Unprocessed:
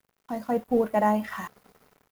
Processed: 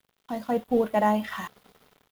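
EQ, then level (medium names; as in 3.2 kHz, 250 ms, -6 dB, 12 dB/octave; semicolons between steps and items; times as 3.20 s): peaking EQ 3.4 kHz +8.5 dB 0.63 oct; 0.0 dB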